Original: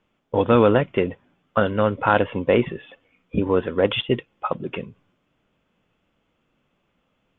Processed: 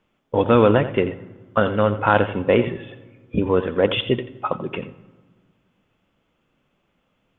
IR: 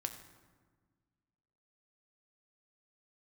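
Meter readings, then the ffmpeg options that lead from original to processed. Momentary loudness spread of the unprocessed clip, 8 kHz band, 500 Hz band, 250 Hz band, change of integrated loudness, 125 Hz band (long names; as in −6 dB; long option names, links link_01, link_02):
13 LU, can't be measured, +1.0 dB, +1.0 dB, +1.0 dB, +2.0 dB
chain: -filter_complex "[0:a]asplit=2[link_01][link_02];[1:a]atrim=start_sample=2205,adelay=86[link_03];[link_02][link_03]afir=irnorm=-1:irlink=0,volume=-11dB[link_04];[link_01][link_04]amix=inputs=2:normalize=0,volume=1dB"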